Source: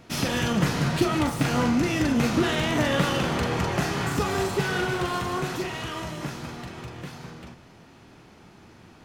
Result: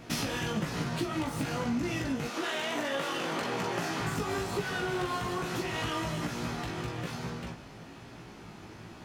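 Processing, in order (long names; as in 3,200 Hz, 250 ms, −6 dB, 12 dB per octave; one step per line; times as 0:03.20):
0:02.27–0:03.99: high-pass filter 510 Hz → 170 Hz 12 dB per octave
downward compressor 10 to 1, threshold −32 dBFS, peak gain reduction 15.5 dB
chorus effect 1.1 Hz, delay 17 ms, depth 2.2 ms
level +6 dB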